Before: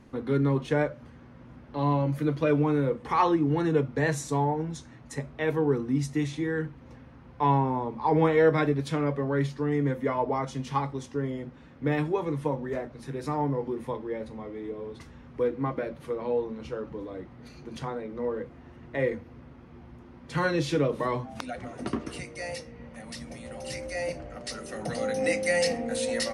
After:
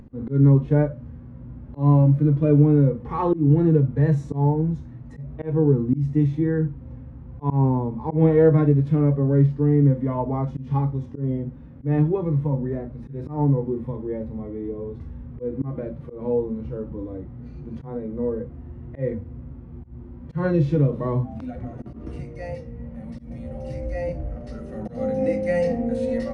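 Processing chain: harmonic-percussive split percussive -12 dB; tilt EQ -4.5 dB/octave; slow attack 147 ms; upward compressor, threshold -44 dBFS

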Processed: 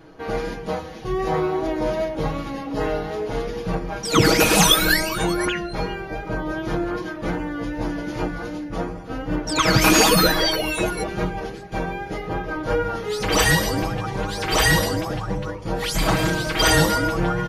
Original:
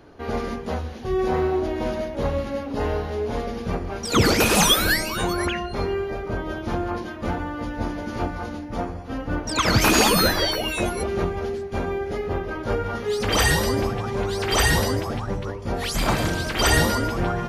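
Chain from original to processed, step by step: vibrato 2.6 Hz 27 cents; comb 6.3 ms, depth 78%

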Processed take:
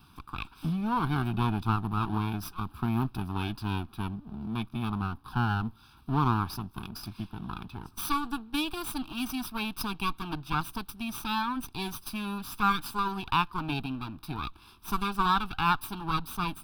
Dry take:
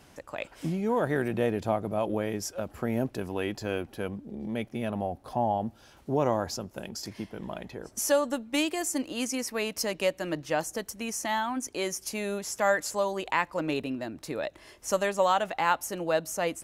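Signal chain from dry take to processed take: comb filter that takes the minimum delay 0.81 ms; static phaser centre 2 kHz, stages 6; trim +2 dB

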